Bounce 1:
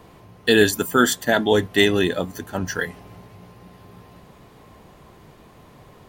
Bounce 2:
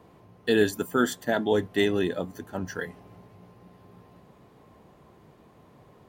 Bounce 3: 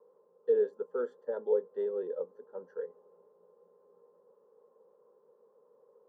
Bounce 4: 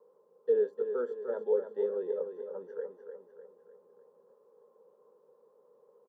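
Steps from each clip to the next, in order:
high-pass 110 Hz 6 dB/octave; tilt shelf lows +4 dB, about 1.3 kHz; trim -8.5 dB
ladder band-pass 530 Hz, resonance 70%; static phaser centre 460 Hz, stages 8; trim +1.5 dB
feedback delay 300 ms, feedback 48%, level -8 dB

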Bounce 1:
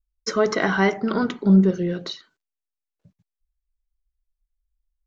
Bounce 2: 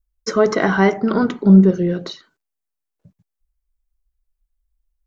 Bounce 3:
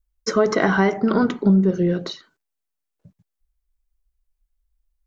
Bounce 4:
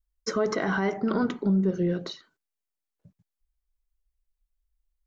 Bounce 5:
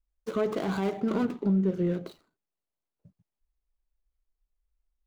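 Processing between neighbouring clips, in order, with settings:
peaking EQ 3.6 kHz -6 dB 2.4 oct; trim +5.5 dB
compression 10:1, threshold -12 dBFS, peak gain reduction 8 dB
peak limiter -10.5 dBFS, peak gain reduction 6.5 dB; trim -6 dB
median filter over 25 samples; trim -1.5 dB

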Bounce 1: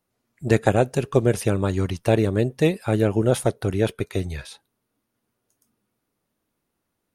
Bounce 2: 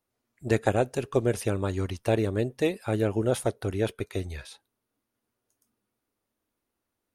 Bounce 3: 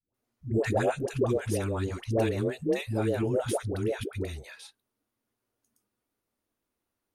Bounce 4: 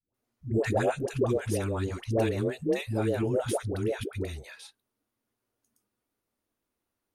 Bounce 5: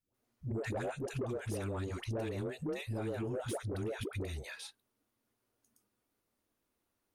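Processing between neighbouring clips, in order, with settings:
peaking EQ 160 Hz -10.5 dB 0.41 oct; trim -5 dB
phase dispersion highs, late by 143 ms, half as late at 510 Hz; trim -1.5 dB
no audible change
compression 5:1, threshold -34 dBFS, peak gain reduction 12 dB; saturation -31.5 dBFS, distortion -17 dB; trim +1 dB

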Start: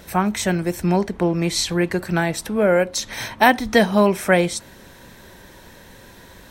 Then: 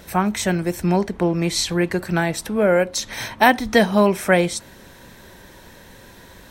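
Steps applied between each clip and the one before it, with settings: no audible change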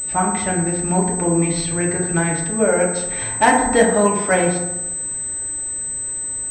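bass shelf 130 Hz +3.5 dB; FDN reverb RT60 1.1 s, low-frequency decay 1×, high-frequency decay 0.35×, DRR -2 dB; class-D stage that switches slowly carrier 8.1 kHz; trim -3.5 dB

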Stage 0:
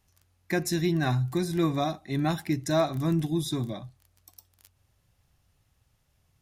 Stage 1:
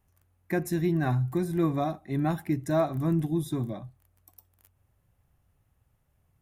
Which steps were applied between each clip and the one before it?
peaking EQ 4.8 kHz -14 dB 1.7 oct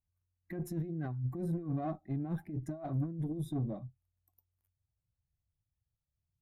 compressor with a negative ratio -29 dBFS, ratio -0.5; valve stage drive 29 dB, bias 0.6; spectral contrast expander 1.5:1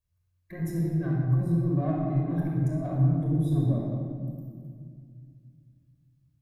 simulated room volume 4000 m³, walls mixed, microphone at 5.5 m

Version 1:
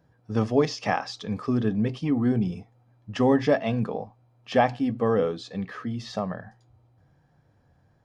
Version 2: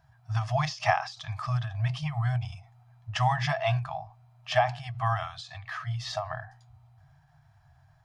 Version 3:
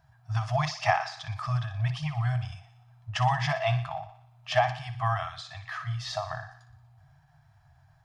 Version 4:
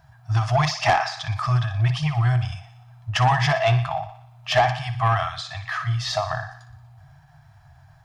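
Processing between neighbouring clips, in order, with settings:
FFT band-reject 160–620 Hz; endings held to a fixed fall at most 130 dB/s; trim +4 dB
thinning echo 60 ms, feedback 62%, high-pass 490 Hz, level -12 dB
saturation -20 dBFS, distortion -14 dB; trim +9 dB

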